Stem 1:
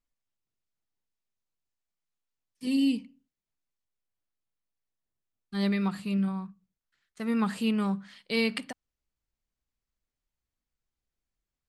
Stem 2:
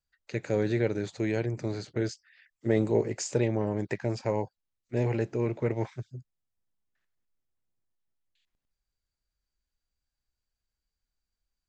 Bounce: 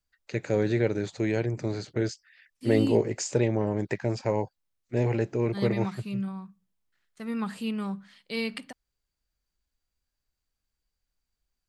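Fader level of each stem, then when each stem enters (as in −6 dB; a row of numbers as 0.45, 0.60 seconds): −4.0, +2.0 decibels; 0.00, 0.00 seconds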